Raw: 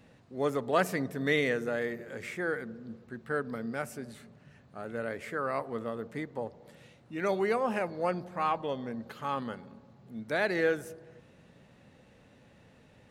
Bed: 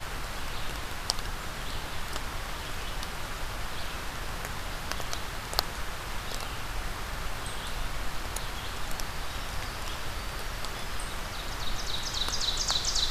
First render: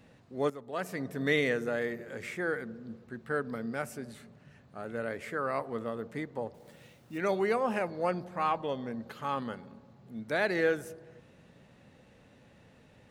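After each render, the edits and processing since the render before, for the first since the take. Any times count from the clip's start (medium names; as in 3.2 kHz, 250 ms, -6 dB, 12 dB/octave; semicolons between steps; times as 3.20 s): 0.50–1.19 s: fade in quadratic, from -13 dB; 6.54–7.18 s: companded quantiser 6-bit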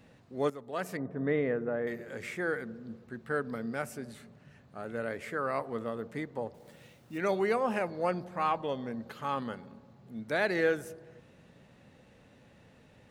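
0.97–1.87 s: low-pass 1.2 kHz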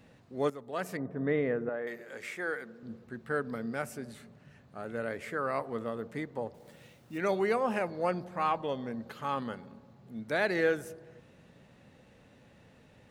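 1.69–2.83 s: high-pass 530 Hz 6 dB/octave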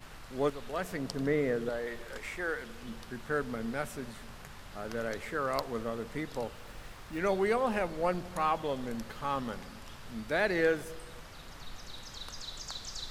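add bed -13.5 dB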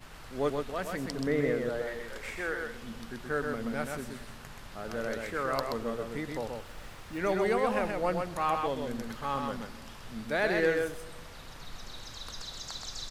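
delay 128 ms -4 dB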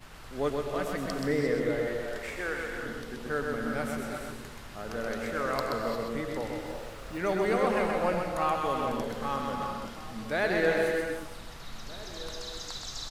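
echo from a far wall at 270 m, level -17 dB; gated-style reverb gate 380 ms rising, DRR 3 dB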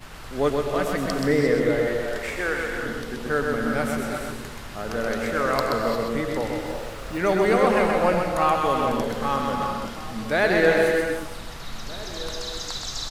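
trim +7.5 dB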